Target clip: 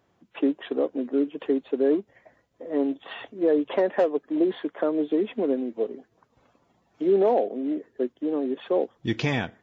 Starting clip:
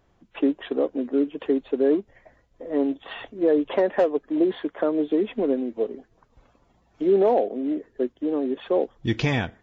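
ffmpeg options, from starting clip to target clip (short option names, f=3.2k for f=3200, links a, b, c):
-af "highpass=120,volume=-1.5dB"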